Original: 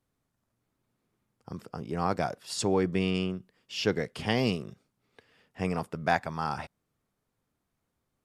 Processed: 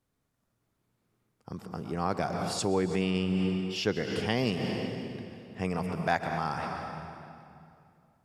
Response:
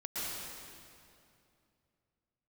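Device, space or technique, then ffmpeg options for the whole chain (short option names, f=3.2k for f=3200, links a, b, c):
ducked reverb: -filter_complex "[0:a]asplit=3[a][b][c];[1:a]atrim=start_sample=2205[d];[b][d]afir=irnorm=-1:irlink=0[e];[c]apad=whole_len=363695[f];[e][f]sidechaincompress=threshold=-35dB:ratio=8:attack=16:release=102,volume=-3.5dB[g];[a][g]amix=inputs=2:normalize=0,asettb=1/sr,asplit=3[h][i][j];[h]atrim=end=3.014[k];[i]atrim=start=3.01:end=3.76,asetpts=PTS-STARTPTS,afade=t=in:d=0.004:c=qsin,afade=t=out:st=0.746:d=0.004:c=qsin,bandreject=f=6.6k:w=5[l];[j]atrim=start=3.756[m];[k][l]acrossfade=d=0.004:c1=hsin:c2=qsin[n];[n][m]acrossfade=d=0.004:c1=qsin:c2=hsin,volume=-2.5dB"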